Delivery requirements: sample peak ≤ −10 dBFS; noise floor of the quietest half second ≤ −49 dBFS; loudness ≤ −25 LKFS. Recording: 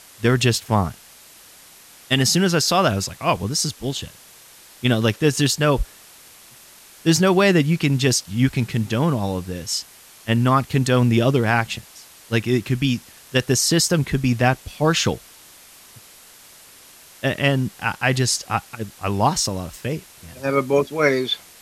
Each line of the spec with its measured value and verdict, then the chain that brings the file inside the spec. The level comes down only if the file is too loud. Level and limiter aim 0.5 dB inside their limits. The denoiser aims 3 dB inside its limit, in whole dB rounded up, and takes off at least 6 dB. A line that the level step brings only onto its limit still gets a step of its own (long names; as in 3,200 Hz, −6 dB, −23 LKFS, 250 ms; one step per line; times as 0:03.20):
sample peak −5.5 dBFS: out of spec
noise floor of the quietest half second −47 dBFS: out of spec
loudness −20.5 LKFS: out of spec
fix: level −5 dB